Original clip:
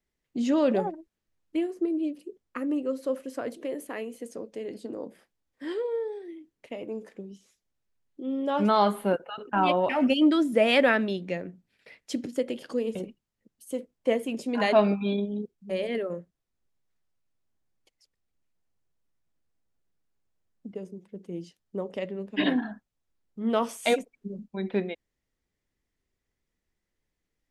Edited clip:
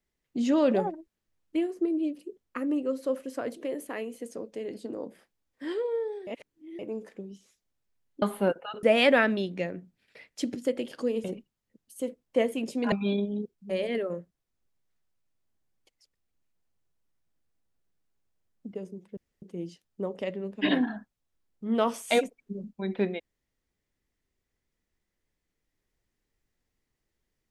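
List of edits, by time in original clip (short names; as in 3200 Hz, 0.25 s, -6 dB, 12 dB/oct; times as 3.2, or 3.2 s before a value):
6.27–6.79 reverse
8.22–8.86 cut
9.47–10.54 cut
14.63–14.92 cut
21.17 insert room tone 0.25 s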